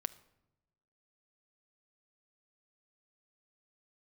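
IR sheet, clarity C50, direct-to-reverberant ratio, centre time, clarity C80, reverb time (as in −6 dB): 18.0 dB, 12.5 dB, 3 ms, 20.5 dB, 0.95 s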